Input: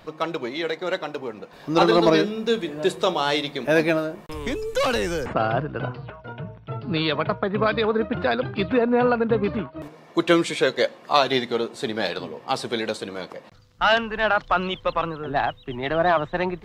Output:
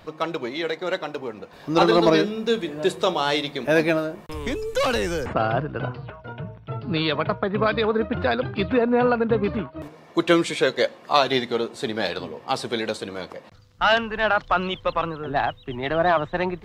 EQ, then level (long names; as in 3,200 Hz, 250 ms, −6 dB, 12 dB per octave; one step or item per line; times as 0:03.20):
parametric band 86 Hz +7.5 dB 0.32 octaves
0.0 dB